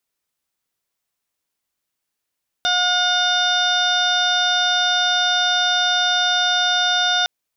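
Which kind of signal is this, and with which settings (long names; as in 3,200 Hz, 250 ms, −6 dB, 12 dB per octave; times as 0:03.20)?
steady harmonic partials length 4.61 s, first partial 720 Hz, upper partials 1.5/−14.5/−7/4/−13/−8/−8 dB, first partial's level −22.5 dB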